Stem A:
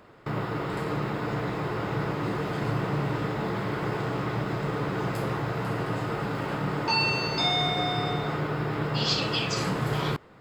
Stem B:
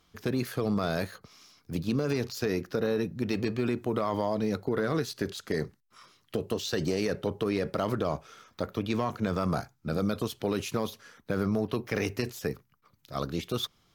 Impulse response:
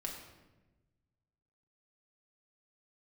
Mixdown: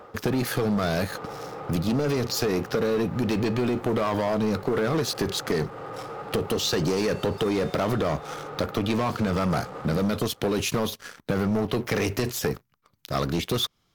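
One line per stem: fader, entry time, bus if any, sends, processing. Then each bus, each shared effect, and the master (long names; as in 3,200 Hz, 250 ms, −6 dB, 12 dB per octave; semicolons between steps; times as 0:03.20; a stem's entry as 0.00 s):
+0.5 dB, 0.00 s, no send, gain into a clipping stage and back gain 31.5 dB; hollow resonant body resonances 520/790/1,200 Hz, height 15 dB, ringing for 25 ms; automatic ducking −11 dB, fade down 0.25 s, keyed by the second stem
+3.0 dB, 0.00 s, no send, leveller curve on the samples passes 3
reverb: not used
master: downward compressor 2.5 to 1, threshold −25 dBFS, peak gain reduction 7 dB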